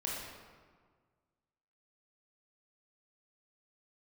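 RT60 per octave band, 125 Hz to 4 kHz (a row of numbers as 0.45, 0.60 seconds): 2.0, 1.8, 1.7, 1.6, 1.3, 1.0 seconds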